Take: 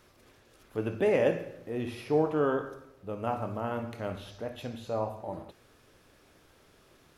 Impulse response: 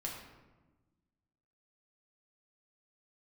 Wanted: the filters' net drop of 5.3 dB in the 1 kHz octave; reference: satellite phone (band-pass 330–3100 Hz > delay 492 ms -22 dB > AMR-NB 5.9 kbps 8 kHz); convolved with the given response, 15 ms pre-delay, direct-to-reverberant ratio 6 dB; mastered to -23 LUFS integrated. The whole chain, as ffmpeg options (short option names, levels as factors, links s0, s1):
-filter_complex "[0:a]equalizer=f=1000:t=o:g=-7.5,asplit=2[s0][s1];[1:a]atrim=start_sample=2205,adelay=15[s2];[s1][s2]afir=irnorm=-1:irlink=0,volume=0.501[s3];[s0][s3]amix=inputs=2:normalize=0,highpass=330,lowpass=3100,aecho=1:1:492:0.0794,volume=4.22" -ar 8000 -c:a libopencore_amrnb -b:a 5900